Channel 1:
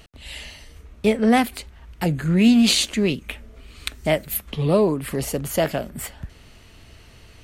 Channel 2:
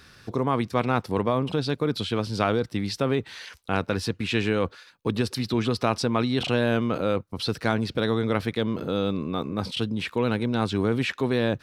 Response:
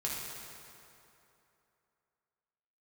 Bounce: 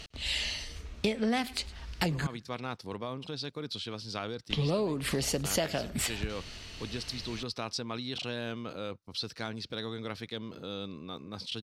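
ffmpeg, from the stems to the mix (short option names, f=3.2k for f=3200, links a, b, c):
-filter_complex "[0:a]highshelf=f=8.5k:g=-9,volume=0dB,asplit=3[a][b][c];[a]atrim=end=2.27,asetpts=PTS-STARTPTS,afade=t=out:st=2.266:d=0.004:c=hsin[d];[b]atrim=start=2.27:end=4.5,asetpts=PTS-STARTPTS,volume=0[e];[c]atrim=start=4.5,asetpts=PTS-STARTPTS,afade=t=in:d=0.004:c=hsin[f];[d][e][f]concat=n=3:v=0:a=1,asplit=2[g][h];[h]volume=-24dB[i];[1:a]adelay=1750,volume=-14.5dB[j];[i]aecho=0:1:104|208|312:1|0.17|0.0289[k];[g][j][k]amix=inputs=3:normalize=0,equalizer=f=4.9k:w=0.71:g=11.5,acompressor=threshold=-27dB:ratio=6"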